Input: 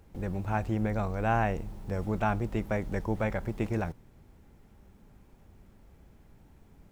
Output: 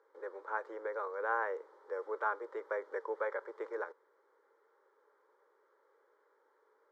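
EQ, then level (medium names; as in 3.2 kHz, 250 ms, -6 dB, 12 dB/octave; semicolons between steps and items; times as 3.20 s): elliptic high-pass 450 Hz, stop band 80 dB; low-pass 2.4 kHz 12 dB/octave; static phaser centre 710 Hz, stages 6; +1.0 dB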